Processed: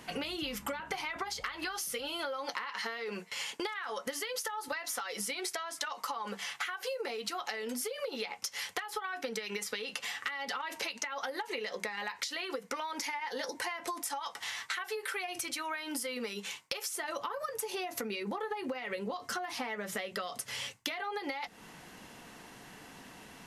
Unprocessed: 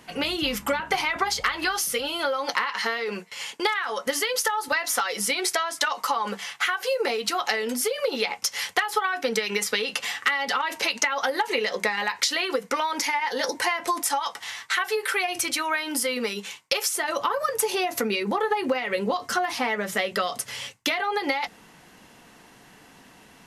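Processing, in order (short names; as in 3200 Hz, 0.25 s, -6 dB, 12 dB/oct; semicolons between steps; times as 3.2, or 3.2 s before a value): compressor, threshold -35 dBFS, peak gain reduction 16.5 dB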